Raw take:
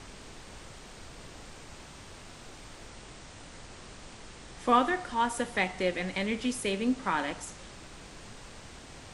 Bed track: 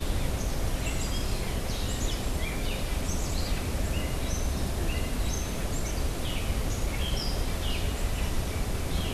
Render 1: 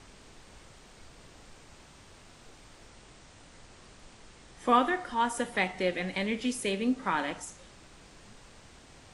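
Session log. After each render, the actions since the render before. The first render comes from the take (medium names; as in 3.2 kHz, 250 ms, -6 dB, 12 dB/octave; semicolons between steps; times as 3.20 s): noise print and reduce 6 dB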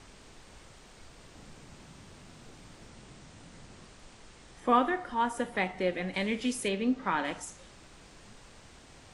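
1.35–3.85 s: peaking EQ 170 Hz +8 dB 1.6 oct; 4.60–6.14 s: treble shelf 2.6 kHz -7.5 dB; 6.68–7.25 s: distance through air 89 m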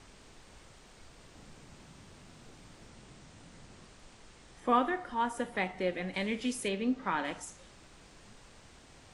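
trim -2.5 dB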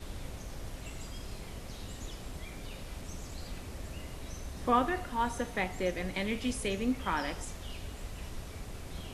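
add bed track -13 dB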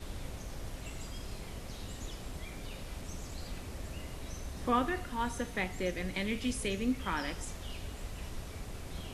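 dynamic bell 760 Hz, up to -5 dB, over -45 dBFS, Q 1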